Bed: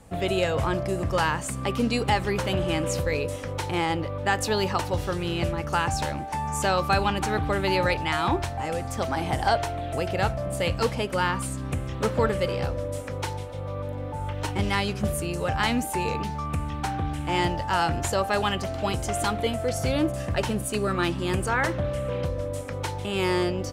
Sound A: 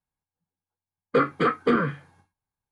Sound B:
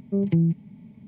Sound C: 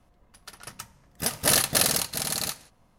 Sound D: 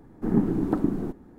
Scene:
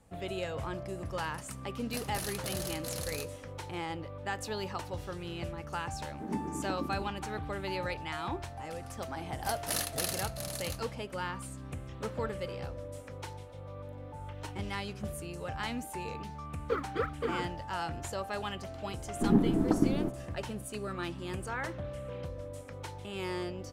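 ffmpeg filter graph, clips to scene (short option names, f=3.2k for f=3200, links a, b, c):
-filter_complex "[3:a]asplit=2[a][b];[4:a]asplit=2[c][d];[0:a]volume=-12dB[e];[a]acompressor=threshold=-25dB:ratio=6:attack=3.2:release=140:knee=1:detection=peak[f];[c]highpass=180[g];[1:a]aphaser=in_gain=1:out_gain=1:delay=4.5:decay=0.75:speed=1.9:type=triangular[h];[f]atrim=end=2.98,asetpts=PTS-STARTPTS,volume=-10dB,afade=t=in:d=0.004:c=hsin,afade=t=out:st=2.976:d=0.004:c=hsin,adelay=710[i];[g]atrim=end=1.38,asetpts=PTS-STARTPTS,volume=-12.5dB,afade=t=in:d=0.004:c=hsin,afade=t=out:st=1.376:d=0.004:c=hsin,adelay=5970[j];[b]atrim=end=2.98,asetpts=PTS-STARTPTS,volume=-12.5dB,afade=t=in:d=0.004:c=hsin,afade=t=out:st=2.976:d=0.004:c=hsin,adelay=8230[k];[h]atrim=end=2.71,asetpts=PTS-STARTPTS,volume=-16dB,afade=t=in:d=0.004:c=hsin,afade=t=out:st=2.706:d=0.004:c=hsin,adelay=15550[l];[d]atrim=end=1.38,asetpts=PTS-STARTPTS,volume=-2.5dB,afade=t=in:d=0.004:c=hsin,afade=t=out:st=1.376:d=0.004:c=hsin,adelay=18980[m];[e][i][j][k][l][m]amix=inputs=6:normalize=0"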